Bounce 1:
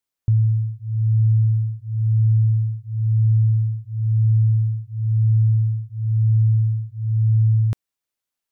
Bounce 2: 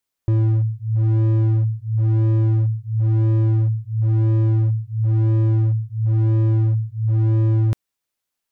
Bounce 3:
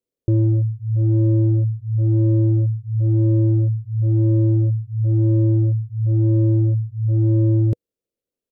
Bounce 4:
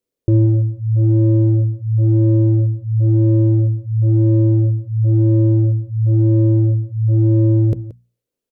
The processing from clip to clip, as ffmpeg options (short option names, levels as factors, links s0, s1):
-af "asoftclip=type=hard:threshold=0.119,volume=1.5"
-af "firequalizer=gain_entry='entry(100,0);entry(490,10);entry(790,-13);entry(1700,-15);entry(2600,-12)':delay=0.05:min_phase=1"
-af "bandreject=f=60:t=h:w=6,bandreject=f=120:t=h:w=6,bandreject=f=180:t=h:w=6,bandreject=f=240:t=h:w=6,aecho=1:1:177:0.15,volume=1.68"